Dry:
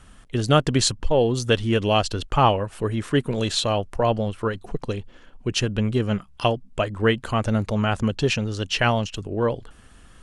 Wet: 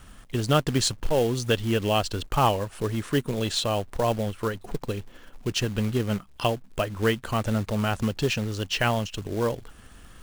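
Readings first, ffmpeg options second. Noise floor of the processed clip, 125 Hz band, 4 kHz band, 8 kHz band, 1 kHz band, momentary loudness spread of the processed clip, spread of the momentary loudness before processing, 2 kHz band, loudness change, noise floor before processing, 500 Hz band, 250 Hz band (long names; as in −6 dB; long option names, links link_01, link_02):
−50 dBFS, −3.5 dB, −3.0 dB, −2.5 dB, −3.5 dB, 8 LU, 8 LU, −3.5 dB, −3.5 dB, −50 dBFS, −3.5 dB, −3.5 dB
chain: -filter_complex "[0:a]asplit=2[link_01][link_02];[link_02]acompressor=threshold=-34dB:ratio=6,volume=0dB[link_03];[link_01][link_03]amix=inputs=2:normalize=0,acrusher=bits=4:mode=log:mix=0:aa=0.000001,volume=-5dB"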